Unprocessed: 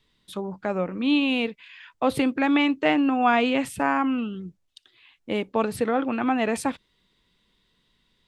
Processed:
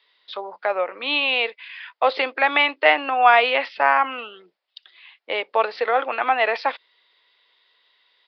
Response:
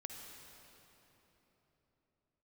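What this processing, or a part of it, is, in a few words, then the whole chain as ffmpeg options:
musical greeting card: -af "aresample=11025,aresample=44100,highpass=frequency=530:width=0.5412,highpass=frequency=530:width=1.3066,equalizer=frequency=2000:width_type=o:width=0.27:gain=4,volume=7dB"

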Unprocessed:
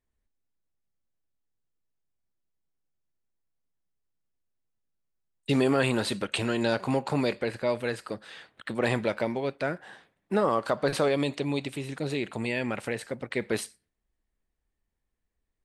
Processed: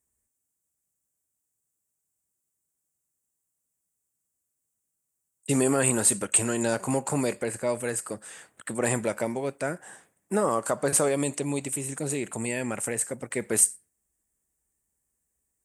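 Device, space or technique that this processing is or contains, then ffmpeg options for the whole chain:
budget condenser microphone: -af "highpass=62,highshelf=frequency=5700:width_type=q:width=3:gain=13"

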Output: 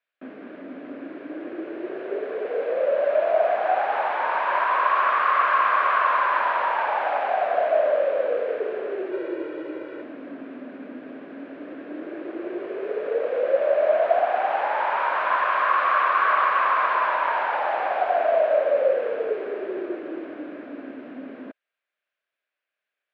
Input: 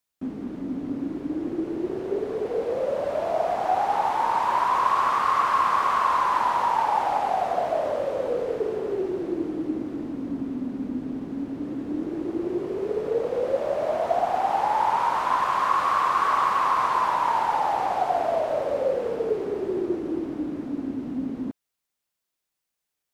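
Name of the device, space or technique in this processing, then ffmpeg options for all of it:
phone earpiece: -filter_complex "[0:a]asettb=1/sr,asplit=3[link_01][link_02][link_03];[link_01]atrim=end=9.124[link_04];[link_02]atrim=start=9.12:end=10.02,asetpts=PTS-STARTPTS,afade=type=in:duration=0.004:curve=qsin,afade=type=out:start_time=0.896:duration=0.004:curve=qsin,aecho=1:1:2.1:0.94,atrim=end_sample=39690[link_05];[link_03]atrim=start=10.016[link_06];[link_04][link_05]acrossfade=duration=0.004:curve1=hsin:curve2=qsin[link_07];[link_07][link_06]acrossfade=duration=0.004:curve1=qsin:curve2=hsin,highpass=470,equalizer=frequency=600:width_type=q:width=4:gain=8,equalizer=frequency=870:width_type=q:width=4:gain=-7,equalizer=frequency=1600:width_type=q:width=4:gain=9,equalizer=frequency=2400:width_type=q:width=4:gain=5,lowpass=frequency=3300:width=0.5412,lowpass=frequency=3300:width=1.3066,volume=1.5dB"

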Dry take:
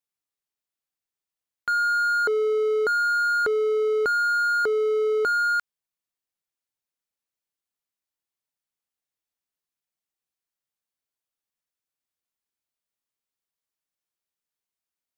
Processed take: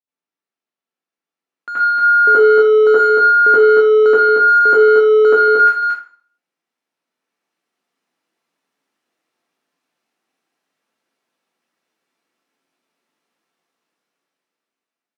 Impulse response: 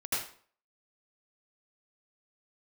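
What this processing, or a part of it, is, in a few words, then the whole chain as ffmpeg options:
far laptop microphone: -filter_complex "[0:a]aemphasis=mode=reproduction:type=75fm,asettb=1/sr,asplit=3[link_01][link_02][link_03];[link_01]atrim=end=2.974[link_04];[link_02]atrim=start=2.97:end=4.48,asetpts=PTS-STARTPTS,afade=type=in:duration=0.004:curve=qsin,afade=type=out:start_time=1.506:duration=0.004:curve=qsin,lowpass=frequency=10000:width=0.5412,lowpass=frequency=10000:width=1.3066[link_05];[link_03]atrim=start=4.476[link_06];[link_04][link_05]acrossfade=duration=0.004:curve1=hsin:curve2=qsin[link_07];[link_07][link_06]acrossfade=duration=0.004:curve1=qsin:curve2=hsin,equalizer=frequency=320:width=1.5:gain=3.5,aecho=1:1:229:0.562[link_08];[1:a]atrim=start_sample=2205[link_09];[link_08][link_09]afir=irnorm=-1:irlink=0,highpass=frequency=170:width=0.5412,highpass=frequency=170:width=1.3066,dynaudnorm=framelen=290:gausssize=11:maxgain=15dB,volume=-1dB"

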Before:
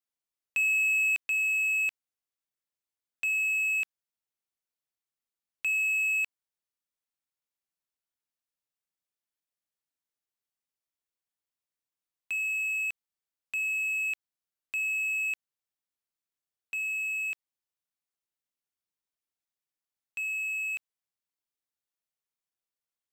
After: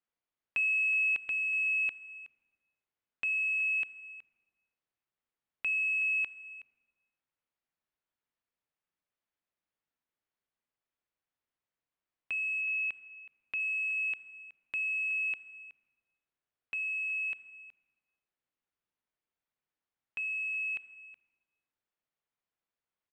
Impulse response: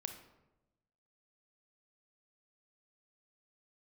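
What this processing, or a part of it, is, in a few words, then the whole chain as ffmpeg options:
compressed reverb return: -filter_complex "[0:a]asplit=2[link_01][link_02];[1:a]atrim=start_sample=2205[link_03];[link_02][link_03]afir=irnorm=-1:irlink=0,acompressor=threshold=-46dB:ratio=6,volume=1dB[link_04];[link_01][link_04]amix=inputs=2:normalize=0,lowpass=2600,asettb=1/sr,asplit=3[link_05][link_06][link_07];[link_05]atrim=end=12.614[link_08];[link_06]atrim=start=12.61:end=13.6,asetpts=PTS-STARTPTS,afade=type=in:duration=0.004:curve=qsin,afade=type=out:start_time=0.986:duration=0.004:curve=qsin,lowpass=5300[link_09];[link_07]atrim=start=13.596[link_10];[link_08][link_09]acrossfade=duration=0.004:curve1=hsin:curve2=qsin[link_11];[link_11][link_10]acrossfade=duration=0.004:curve1=qsin:curve2=hsin,aecho=1:1:371:0.141,volume=-1dB"

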